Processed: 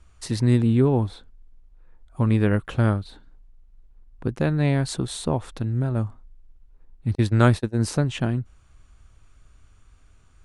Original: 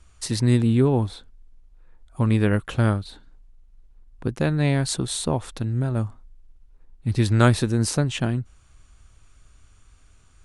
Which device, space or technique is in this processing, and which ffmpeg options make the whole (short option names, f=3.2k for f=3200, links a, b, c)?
behind a face mask: -filter_complex "[0:a]highshelf=f=3.2k:g=-7,asettb=1/sr,asplit=3[a][b][c];[a]atrim=end=7.154[d];[b]atrim=start=7.15:end=7.8,asetpts=PTS-STARTPTS,afade=t=in:d=0.004:c=qsin,afade=t=out:st=0.646:d=0.004:c=qsin,agate=range=-43dB:threshold=-20dB:ratio=16:detection=peak[e];[c]atrim=start=7.796[f];[d][e]acrossfade=d=0.004:c1=hsin:c2=qsin[g];[g][f]acrossfade=d=0.004:c1=qsin:c2=hsin"